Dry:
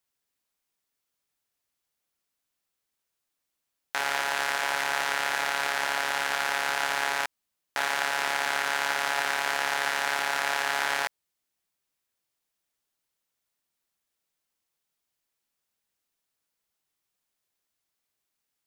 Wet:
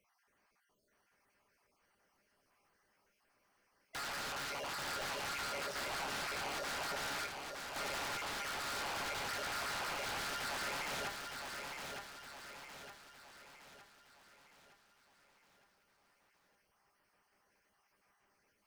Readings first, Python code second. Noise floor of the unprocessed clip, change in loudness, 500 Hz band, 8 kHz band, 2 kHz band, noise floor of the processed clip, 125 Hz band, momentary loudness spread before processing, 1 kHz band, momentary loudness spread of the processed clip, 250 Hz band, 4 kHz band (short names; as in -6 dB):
-83 dBFS, -13.0 dB, -9.0 dB, -9.5 dB, -14.0 dB, -78 dBFS, +0.5 dB, 3 LU, -12.5 dB, 14 LU, -4.0 dB, -10.0 dB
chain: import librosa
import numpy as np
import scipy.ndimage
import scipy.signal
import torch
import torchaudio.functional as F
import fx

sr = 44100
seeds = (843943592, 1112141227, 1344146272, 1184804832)

y = fx.spec_dropout(x, sr, seeds[0], share_pct=38)
y = np.convolve(y, np.full(12, 1.0 / 12))[:len(y)]
y = fx.low_shelf(y, sr, hz=490.0, db=-6.5)
y = fx.comb_fb(y, sr, f0_hz=200.0, decay_s=0.15, harmonics='all', damping=0.0, mix_pct=60)
y = fx.power_curve(y, sr, exponent=0.7)
y = 10.0 ** (-38.5 / 20.0) * (np.abs((y / 10.0 ** (-38.5 / 20.0) + 3.0) % 4.0 - 2.0) - 1.0)
y = fx.echo_feedback(y, sr, ms=913, feedback_pct=48, wet_db=-5)
y = y * librosa.db_to_amplitude(1.0)